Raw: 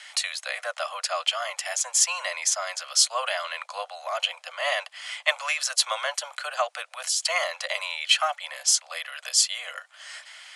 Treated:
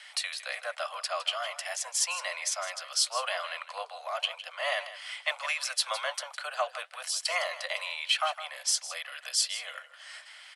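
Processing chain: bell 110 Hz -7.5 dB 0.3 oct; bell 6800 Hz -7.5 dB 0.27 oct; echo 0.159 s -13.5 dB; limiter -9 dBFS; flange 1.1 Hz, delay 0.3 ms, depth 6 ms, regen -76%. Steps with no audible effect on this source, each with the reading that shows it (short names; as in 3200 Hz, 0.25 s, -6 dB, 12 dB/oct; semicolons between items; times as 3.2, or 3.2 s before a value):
bell 110 Hz: input band starts at 450 Hz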